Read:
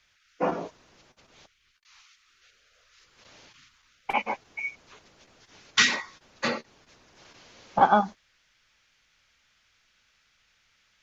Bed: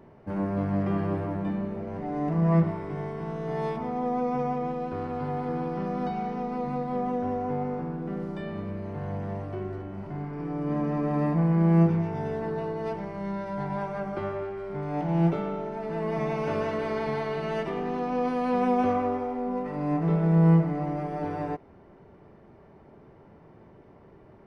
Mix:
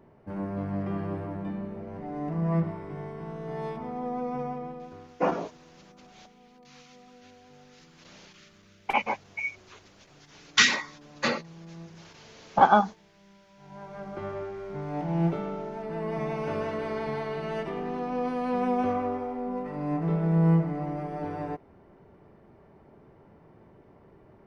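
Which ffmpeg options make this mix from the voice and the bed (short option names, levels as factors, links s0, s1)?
-filter_complex "[0:a]adelay=4800,volume=1.12[s0];[1:a]volume=7.94,afade=t=out:st=4.42:d=0.77:silence=0.0944061,afade=t=in:st=13.59:d=0.79:silence=0.0749894[s1];[s0][s1]amix=inputs=2:normalize=0"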